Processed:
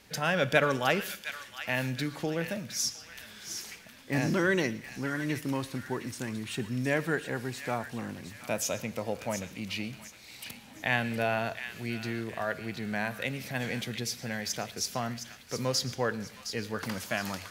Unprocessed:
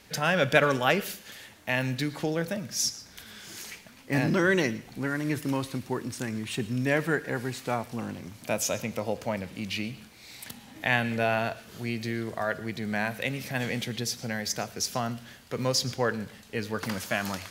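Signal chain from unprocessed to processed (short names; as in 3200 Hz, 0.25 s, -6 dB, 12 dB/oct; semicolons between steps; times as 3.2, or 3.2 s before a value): thin delay 0.714 s, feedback 37%, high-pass 1600 Hz, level -8.5 dB; gain -3 dB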